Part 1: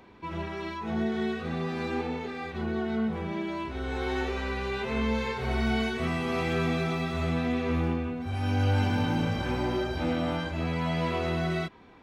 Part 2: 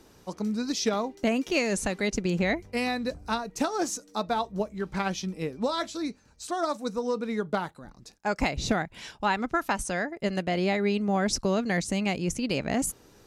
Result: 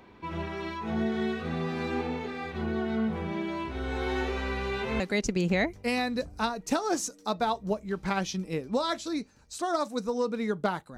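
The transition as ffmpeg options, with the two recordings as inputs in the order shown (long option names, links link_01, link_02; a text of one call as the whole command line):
ffmpeg -i cue0.wav -i cue1.wav -filter_complex "[0:a]apad=whole_dur=10.97,atrim=end=10.97,atrim=end=5.002[link_01];[1:a]atrim=start=1.888:end=7.86[link_02];[link_01][link_02]acrossfade=duration=0.004:curve1=hsin:curve2=hsin" out.wav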